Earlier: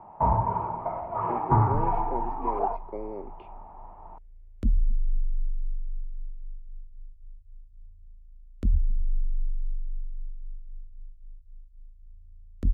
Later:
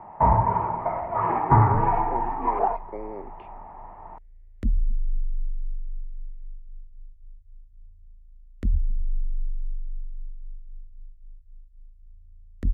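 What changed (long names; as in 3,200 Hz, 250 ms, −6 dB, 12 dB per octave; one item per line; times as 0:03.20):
first sound +4.0 dB
master: add parametric band 1,900 Hz +10.5 dB 0.47 octaves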